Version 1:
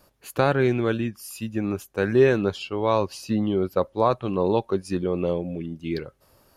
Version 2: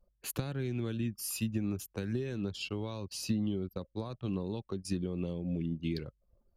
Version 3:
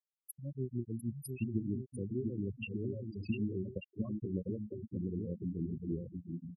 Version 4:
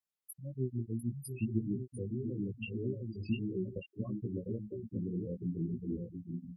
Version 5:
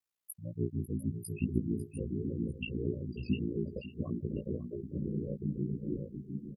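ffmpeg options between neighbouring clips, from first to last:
-filter_complex "[0:a]acompressor=threshold=-27dB:ratio=10,anlmdn=0.01,acrossover=split=270|3000[a][b][c];[b]acompressor=threshold=-52dB:ratio=2.5[d];[a][d][c]amix=inputs=3:normalize=0,volume=1.5dB"
-af "tremolo=f=6.4:d=0.86,aecho=1:1:700|1190|1533|1773|1941:0.631|0.398|0.251|0.158|0.1,afftfilt=real='re*gte(hypot(re,im),0.0355)':imag='im*gte(hypot(re,im),0.0355)':win_size=1024:overlap=0.75"
-af "flanger=delay=15.5:depth=3:speed=1.7,volume=3.5dB"
-af "aeval=exprs='val(0)*sin(2*PI*29*n/s)':c=same,aecho=1:1:548:0.188,volume=4.5dB"

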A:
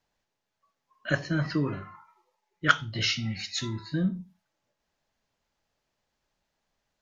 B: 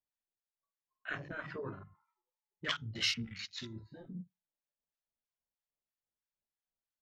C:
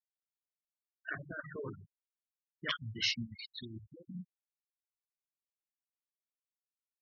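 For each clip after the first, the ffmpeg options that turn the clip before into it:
-filter_complex "[0:a]afftfilt=real='re*lt(hypot(re,im),0.251)':imag='im*lt(hypot(re,im),0.251)':win_size=1024:overlap=0.75,afwtdn=0.0112,acrossover=split=980[a][b];[a]aeval=exprs='val(0)*(1-0.7/2+0.7/2*cos(2*PI*3.1*n/s))':c=same[c];[b]aeval=exprs='val(0)*(1-0.7/2-0.7/2*cos(2*PI*3.1*n/s))':c=same[d];[c][d]amix=inputs=2:normalize=0,volume=-3.5dB"
-af "afftfilt=real='re*gte(hypot(re,im),0.0178)':imag='im*gte(hypot(re,im),0.0178)':win_size=1024:overlap=0.75"

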